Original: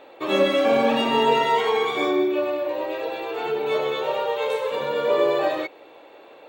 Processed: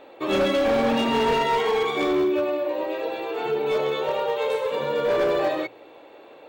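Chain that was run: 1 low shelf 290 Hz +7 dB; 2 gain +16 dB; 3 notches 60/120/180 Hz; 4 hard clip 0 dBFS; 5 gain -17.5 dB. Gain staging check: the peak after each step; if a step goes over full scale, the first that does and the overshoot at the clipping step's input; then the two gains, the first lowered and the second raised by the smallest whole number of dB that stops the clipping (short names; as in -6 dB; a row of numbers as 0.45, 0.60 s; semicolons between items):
-6.0, +10.0, +10.0, 0.0, -17.5 dBFS; step 2, 10.0 dB; step 2 +6 dB, step 5 -7.5 dB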